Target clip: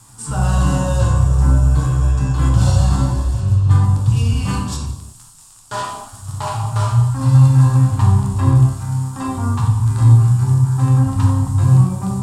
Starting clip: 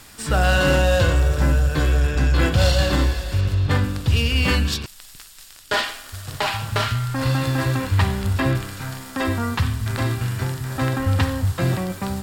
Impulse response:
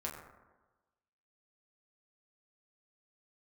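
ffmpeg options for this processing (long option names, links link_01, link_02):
-filter_complex "[0:a]equalizer=frequency=125:width_type=o:width=1:gain=12,equalizer=frequency=500:width_type=o:width=1:gain=-9,equalizer=frequency=1000:width_type=o:width=1:gain=11,equalizer=frequency=2000:width_type=o:width=1:gain=-10,equalizer=frequency=4000:width_type=o:width=1:gain=-4,equalizer=frequency=8000:width_type=o:width=1:gain=11[link_01];[1:a]atrim=start_sample=2205,afade=type=out:start_time=0.19:duration=0.01,atrim=end_sample=8820,asetrate=22491,aresample=44100[link_02];[link_01][link_02]afir=irnorm=-1:irlink=0,volume=-7.5dB"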